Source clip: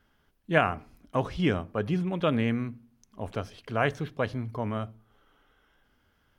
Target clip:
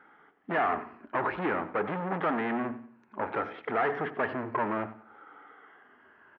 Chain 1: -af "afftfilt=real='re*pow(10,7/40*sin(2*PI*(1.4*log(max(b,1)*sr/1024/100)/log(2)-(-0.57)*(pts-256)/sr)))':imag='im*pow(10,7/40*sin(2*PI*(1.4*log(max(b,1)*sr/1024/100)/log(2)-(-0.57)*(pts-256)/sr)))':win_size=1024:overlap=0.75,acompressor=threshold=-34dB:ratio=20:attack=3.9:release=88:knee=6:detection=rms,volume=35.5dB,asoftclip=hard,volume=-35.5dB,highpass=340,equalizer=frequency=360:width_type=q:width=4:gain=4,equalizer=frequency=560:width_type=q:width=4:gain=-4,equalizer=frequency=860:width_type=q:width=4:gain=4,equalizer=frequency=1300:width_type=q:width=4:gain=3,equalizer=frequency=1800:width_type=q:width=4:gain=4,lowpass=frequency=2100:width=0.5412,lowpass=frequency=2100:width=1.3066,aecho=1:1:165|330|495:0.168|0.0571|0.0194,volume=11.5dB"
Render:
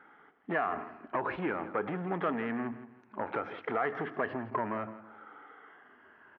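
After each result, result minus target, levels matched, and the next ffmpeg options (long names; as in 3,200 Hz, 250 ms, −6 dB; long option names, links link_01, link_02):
echo 74 ms late; downward compressor: peak gain reduction +10.5 dB
-af "afftfilt=real='re*pow(10,7/40*sin(2*PI*(1.4*log(max(b,1)*sr/1024/100)/log(2)-(-0.57)*(pts-256)/sr)))':imag='im*pow(10,7/40*sin(2*PI*(1.4*log(max(b,1)*sr/1024/100)/log(2)-(-0.57)*(pts-256)/sr)))':win_size=1024:overlap=0.75,acompressor=threshold=-34dB:ratio=20:attack=3.9:release=88:knee=6:detection=rms,volume=35.5dB,asoftclip=hard,volume=-35.5dB,highpass=340,equalizer=frequency=360:width_type=q:width=4:gain=4,equalizer=frequency=560:width_type=q:width=4:gain=-4,equalizer=frequency=860:width_type=q:width=4:gain=4,equalizer=frequency=1300:width_type=q:width=4:gain=3,equalizer=frequency=1800:width_type=q:width=4:gain=4,lowpass=frequency=2100:width=0.5412,lowpass=frequency=2100:width=1.3066,aecho=1:1:91|182|273:0.168|0.0571|0.0194,volume=11.5dB"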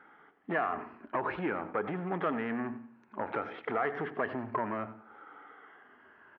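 downward compressor: peak gain reduction +10.5 dB
-af "afftfilt=real='re*pow(10,7/40*sin(2*PI*(1.4*log(max(b,1)*sr/1024/100)/log(2)-(-0.57)*(pts-256)/sr)))':imag='im*pow(10,7/40*sin(2*PI*(1.4*log(max(b,1)*sr/1024/100)/log(2)-(-0.57)*(pts-256)/sr)))':win_size=1024:overlap=0.75,acompressor=threshold=-23dB:ratio=20:attack=3.9:release=88:knee=6:detection=rms,volume=35.5dB,asoftclip=hard,volume=-35.5dB,highpass=340,equalizer=frequency=360:width_type=q:width=4:gain=4,equalizer=frequency=560:width_type=q:width=4:gain=-4,equalizer=frequency=860:width_type=q:width=4:gain=4,equalizer=frequency=1300:width_type=q:width=4:gain=3,equalizer=frequency=1800:width_type=q:width=4:gain=4,lowpass=frequency=2100:width=0.5412,lowpass=frequency=2100:width=1.3066,aecho=1:1:91|182|273:0.168|0.0571|0.0194,volume=11.5dB"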